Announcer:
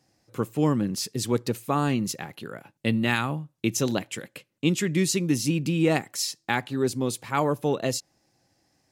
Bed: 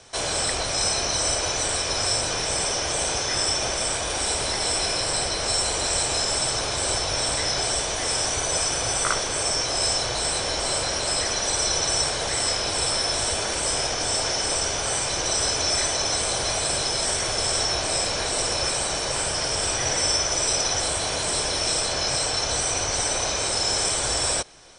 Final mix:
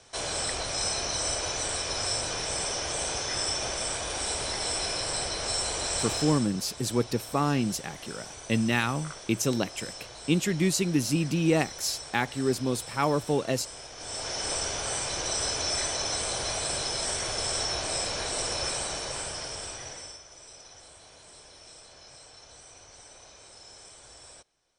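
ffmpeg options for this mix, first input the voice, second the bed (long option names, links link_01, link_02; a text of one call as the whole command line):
ffmpeg -i stem1.wav -i stem2.wav -filter_complex "[0:a]adelay=5650,volume=-1.5dB[link_01];[1:a]volume=6.5dB,afade=type=out:start_time=6.13:duration=0.36:silence=0.237137,afade=type=in:start_time=13.93:duration=0.57:silence=0.237137,afade=type=out:start_time=18.72:duration=1.49:silence=0.1[link_02];[link_01][link_02]amix=inputs=2:normalize=0" out.wav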